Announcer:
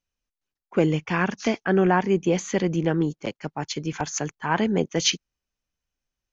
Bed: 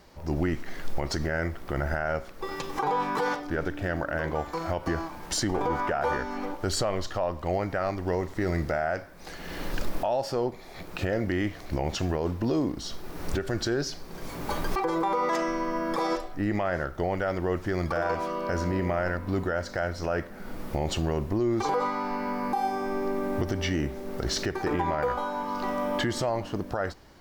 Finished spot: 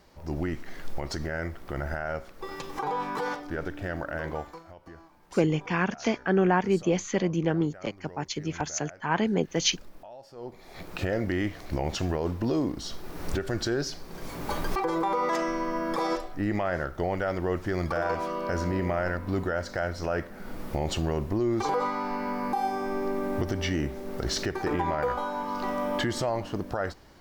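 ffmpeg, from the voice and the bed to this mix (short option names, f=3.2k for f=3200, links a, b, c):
-filter_complex "[0:a]adelay=4600,volume=-3dB[a];[1:a]volume=15dB,afade=t=out:st=4.35:d=0.28:silence=0.16788,afade=t=in:st=10.35:d=0.47:silence=0.11885[b];[a][b]amix=inputs=2:normalize=0"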